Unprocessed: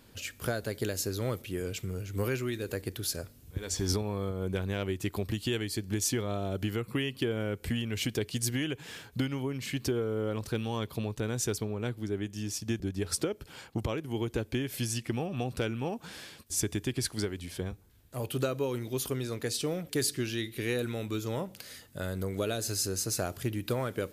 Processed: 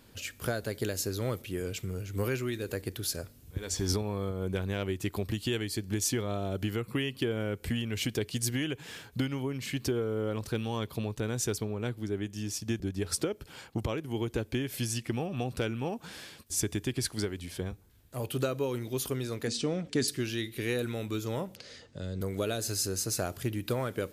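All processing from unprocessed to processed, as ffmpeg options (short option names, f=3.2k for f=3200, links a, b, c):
-filter_complex "[0:a]asettb=1/sr,asplit=3[a][b][c];[a]atrim=end=19.474[d];[b]atrim=start=19.47:end=20.08,asetpts=PTS-STARTPTS,afade=t=in:d=0.004:c=qsin,afade=t=out:st=0.606:d=0.004:c=qsin,lowpass=f=7.7k:w=0.5412,lowpass=f=7.7k:w=1.3066,equalizer=f=230:t=o:w=0.34:g=13[e];[c]atrim=start=20.076[f];[d][e]acrossfade=d=0.004:c1=hsin:c2=qsin[g];[g][f]acrossfade=d=0.004:c1=qsin:c2=hsin,asettb=1/sr,asplit=3[h][i][j];[h]atrim=end=21.564[k];[i]atrim=start=21.56:end=22.21,asetpts=PTS-STARTPTS,afade=t=in:d=0.004:c=qsin,afade=t=out:st=0.646:d=0.004:c=qsin,lowpass=f=6.4k:w=0.5412,lowpass=f=6.4k:w=1.3066,equalizer=f=490:t=o:w=0.78:g=8,acrossover=split=290|3000[l][m][n];[m]acompressor=threshold=-51dB:ratio=2.5:attack=3.2:release=140:knee=2.83:detection=peak[o];[l][o][n]amix=inputs=3:normalize=0[p];[j]atrim=start=22.206[q];[k][p]acrossfade=d=0.004:c1=hsin:c2=qsin[r];[r][q]acrossfade=d=0.004:c1=qsin:c2=hsin"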